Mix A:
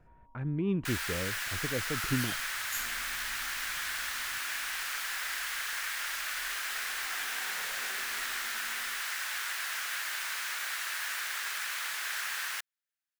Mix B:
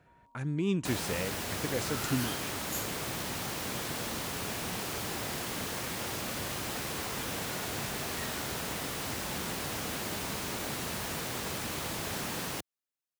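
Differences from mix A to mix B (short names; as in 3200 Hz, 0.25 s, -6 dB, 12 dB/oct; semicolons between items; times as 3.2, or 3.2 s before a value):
speech: remove air absorption 490 m; second sound: remove resonant high-pass 1600 Hz, resonance Q 2.6; master: add HPF 93 Hz 12 dB/oct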